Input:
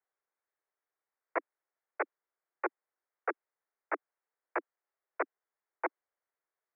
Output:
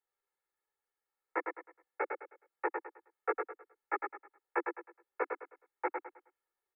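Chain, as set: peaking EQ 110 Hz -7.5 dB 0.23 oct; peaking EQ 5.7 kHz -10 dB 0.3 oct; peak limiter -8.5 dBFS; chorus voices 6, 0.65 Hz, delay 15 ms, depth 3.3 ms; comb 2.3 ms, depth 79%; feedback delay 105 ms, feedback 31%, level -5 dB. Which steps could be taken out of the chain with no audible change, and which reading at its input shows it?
peaking EQ 110 Hz: input has nothing below 240 Hz; peaking EQ 5.7 kHz: input has nothing above 2.7 kHz; peak limiter -8.5 dBFS: peak at its input -17.5 dBFS

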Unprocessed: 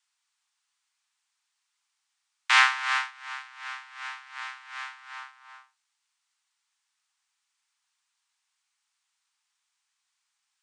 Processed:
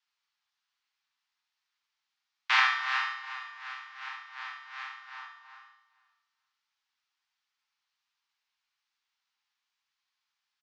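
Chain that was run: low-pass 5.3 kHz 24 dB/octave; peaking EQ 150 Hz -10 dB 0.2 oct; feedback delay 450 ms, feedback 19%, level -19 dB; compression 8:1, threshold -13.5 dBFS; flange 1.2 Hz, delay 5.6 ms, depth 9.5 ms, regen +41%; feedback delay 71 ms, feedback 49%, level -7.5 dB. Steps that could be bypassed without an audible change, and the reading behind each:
peaking EQ 150 Hz: input has nothing below 640 Hz

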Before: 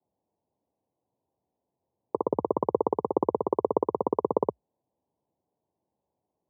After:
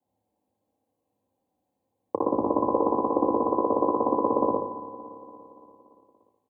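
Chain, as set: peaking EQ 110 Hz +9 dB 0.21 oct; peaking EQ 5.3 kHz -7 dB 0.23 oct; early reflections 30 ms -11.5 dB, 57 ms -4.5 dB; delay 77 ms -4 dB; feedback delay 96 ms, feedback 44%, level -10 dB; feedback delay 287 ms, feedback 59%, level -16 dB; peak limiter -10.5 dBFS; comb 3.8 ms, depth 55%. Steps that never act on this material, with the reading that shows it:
peaking EQ 5.3 kHz: input has nothing above 1.2 kHz

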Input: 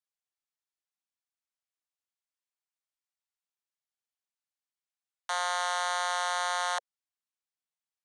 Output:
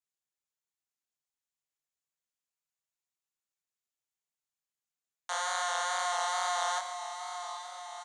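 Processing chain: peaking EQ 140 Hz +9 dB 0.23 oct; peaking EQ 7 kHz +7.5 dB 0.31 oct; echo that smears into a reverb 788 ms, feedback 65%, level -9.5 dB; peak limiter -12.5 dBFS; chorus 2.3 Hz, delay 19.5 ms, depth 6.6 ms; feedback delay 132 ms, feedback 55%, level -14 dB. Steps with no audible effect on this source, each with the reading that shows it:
peaking EQ 140 Hz: input has nothing below 510 Hz; peak limiter -12.5 dBFS: peak at its input -19.0 dBFS

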